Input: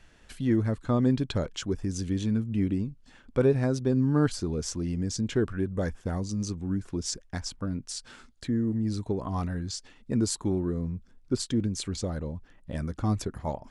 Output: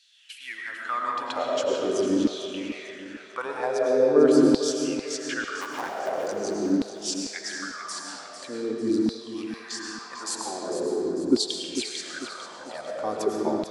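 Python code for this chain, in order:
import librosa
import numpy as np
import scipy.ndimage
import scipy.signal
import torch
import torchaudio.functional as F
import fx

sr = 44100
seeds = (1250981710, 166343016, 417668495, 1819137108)

p1 = fx.cycle_switch(x, sr, every=2, mode='muted', at=(5.6, 6.29), fade=0.02)
p2 = fx.rev_freeverb(p1, sr, rt60_s=3.2, hf_ratio=0.6, predelay_ms=65, drr_db=-1.0)
p3 = fx.filter_lfo_highpass(p2, sr, shape='saw_down', hz=0.44, low_hz=280.0, high_hz=4100.0, q=4.3)
y = p3 + fx.echo_feedback(p3, sr, ms=448, feedback_pct=42, wet_db=-10.5, dry=0)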